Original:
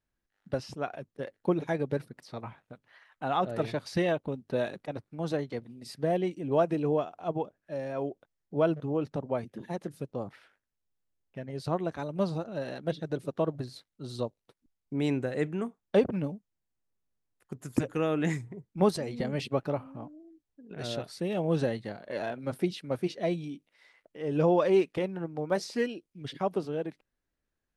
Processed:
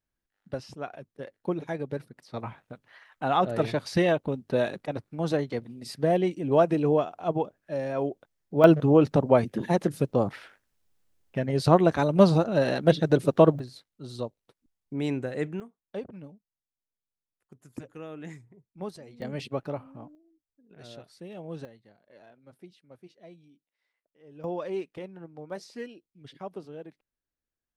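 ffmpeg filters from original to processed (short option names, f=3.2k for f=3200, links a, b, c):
-af "asetnsamples=n=441:p=0,asendcmd='2.34 volume volume 4.5dB;8.64 volume volume 11.5dB;13.59 volume volume -0.5dB;15.6 volume volume -12.5dB;19.22 volume volume -2.5dB;20.15 volume volume -11dB;21.65 volume volume -20dB;24.44 volume volume -9dB',volume=-2.5dB"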